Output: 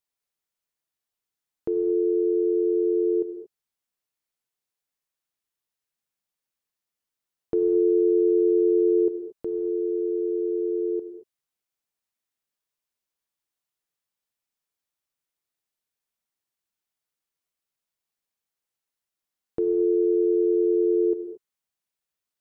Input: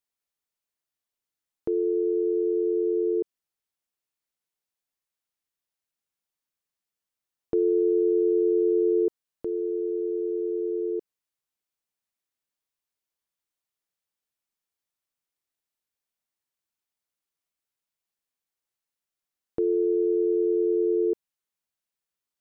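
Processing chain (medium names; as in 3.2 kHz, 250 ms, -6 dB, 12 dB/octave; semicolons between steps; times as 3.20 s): gated-style reverb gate 250 ms flat, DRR 7.5 dB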